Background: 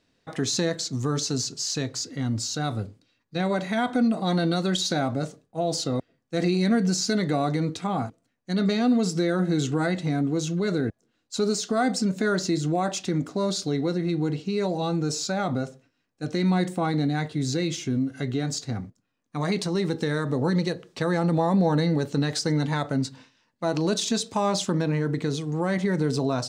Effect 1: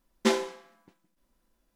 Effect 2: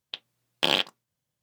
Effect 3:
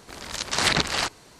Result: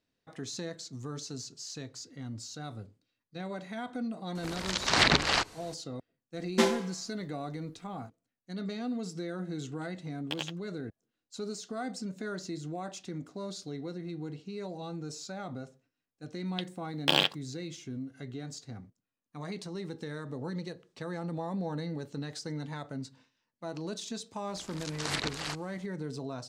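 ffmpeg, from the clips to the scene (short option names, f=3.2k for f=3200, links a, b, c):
-filter_complex "[3:a]asplit=2[a][b];[2:a]asplit=2[c][d];[0:a]volume=-13.5dB[e];[a]acrossover=split=6500[f][g];[g]acompressor=threshold=-48dB:ratio=4:attack=1:release=60[h];[f][h]amix=inputs=2:normalize=0[i];[c]aeval=exprs='val(0)*pow(10,-22*(0.5-0.5*cos(2*PI*11*n/s))/20)':c=same[j];[i]atrim=end=1.39,asetpts=PTS-STARTPTS,volume=-1dB,afade=t=in:d=0.004:c=hsin,afade=t=out:st=1.386:d=0.004:c=hsin,adelay=4350[k];[1:a]atrim=end=1.75,asetpts=PTS-STARTPTS,volume=-0.5dB,afade=t=in:d=0.004:c=hsin,afade=t=out:st=1.746:d=0.004:c=hsin,adelay=6330[l];[j]atrim=end=1.42,asetpts=PTS-STARTPTS,volume=-11dB,afade=t=in:d=0.004:c=hsin,afade=t=out:st=1.416:d=0.004:c=hsin,adelay=9680[m];[d]atrim=end=1.42,asetpts=PTS-STARTPTS,volume=-2dB,afade=t=in:d=0.004:c=hsin,afade=t=out:st=1.416:d=0.004:c=hsin,adelay=16450[n];[b]atrim=end=1.39,asetpts=PTS-STARTPTS,volume=-12dB,afade=t=in:d=0.004:c=hsin,afade=t=out:st=1.386:d=0.004:c=hsin,adelay=24470[o];[e][k][l][m][n][o]amix=inputs=6:normalize=0"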